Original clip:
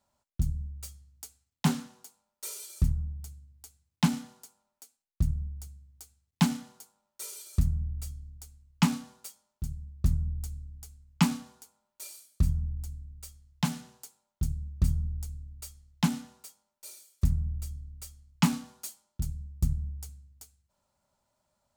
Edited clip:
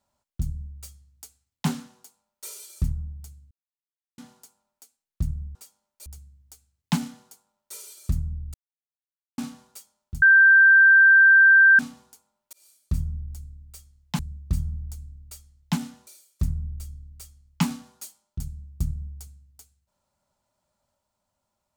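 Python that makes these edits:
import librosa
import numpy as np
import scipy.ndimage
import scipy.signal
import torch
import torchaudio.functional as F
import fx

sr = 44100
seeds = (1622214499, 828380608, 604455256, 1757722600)

y = fx.edit(x, sr, fx.silence(start_s=3.51, length_s=0.67),
    fx.silence(start_s=8.03, length_s=0.84),
    fx.bleep(start_s=9.71, length_s=1.57, hz=1570.0, db=-10.5),
    fx.fade_in_span(start_s=12.02, length_s=0.52, curve='qsin'),
    fx.cut(start_s=13.68, length_s=0.82),
    fx.move(start_s=16.38, length_s=0.51, to_s=5.55), tone=tone)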